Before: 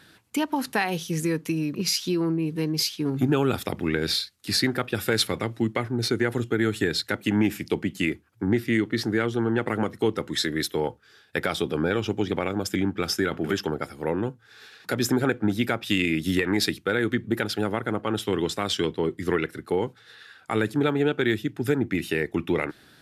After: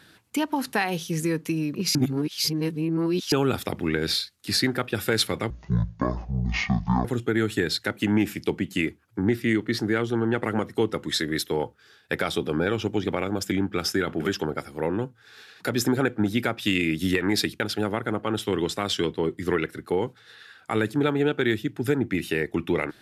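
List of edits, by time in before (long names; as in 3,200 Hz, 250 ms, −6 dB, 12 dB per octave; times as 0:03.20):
0:01.95–0:03.32: reverse
0:05.50–0:06.29: play speed 51%
0:16.84–0:17.40: remove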